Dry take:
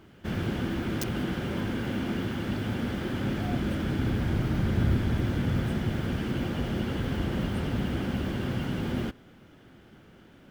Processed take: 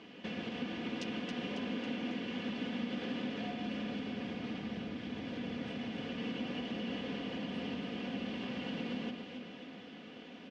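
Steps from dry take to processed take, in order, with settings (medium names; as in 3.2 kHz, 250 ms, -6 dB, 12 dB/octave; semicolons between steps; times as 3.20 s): comb 4.1 ms, depth 50%; compression 12:1, threshold -37 dBFS, peak gain reduction 17 dB; cabinet simulation 250–5500 Hz, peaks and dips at 350 Hz -4 dB, 860 Hz -4 dB, 1.4 kHz -10 dB, 2.7 kHz +6 dB; on a send: echo whose repeats swap between lows and highs 137 ms, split 1.5 kHz, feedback 75%, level -4 dB; on the sum: trim +4 dB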